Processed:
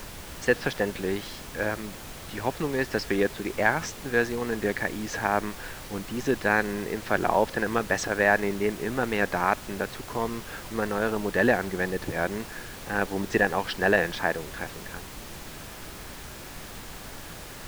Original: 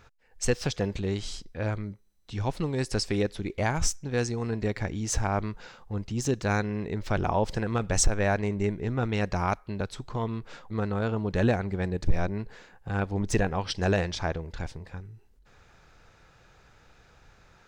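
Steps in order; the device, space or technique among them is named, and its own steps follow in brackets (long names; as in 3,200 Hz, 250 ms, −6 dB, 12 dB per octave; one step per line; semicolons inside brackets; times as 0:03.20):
horn gramophone (band-pass filter 250–3,200 Hz; parametric band 1,700 Hz +9 dB 0.25 octaves; tape wow and flutter; pink noise bed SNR 12 dB)
level +4 dB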